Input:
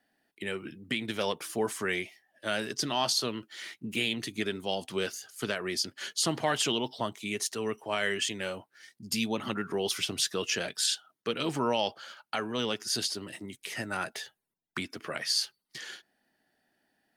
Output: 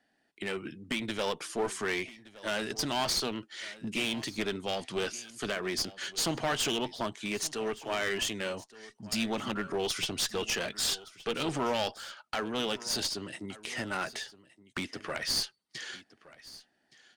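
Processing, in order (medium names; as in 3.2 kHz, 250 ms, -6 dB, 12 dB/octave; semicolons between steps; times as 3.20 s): low-pass 9.2 kHz 24 dB/octave; one-sided clip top -32 dBFS, bottom -21 dBFS; delay 1169 ms -19 dB; trim +1 dB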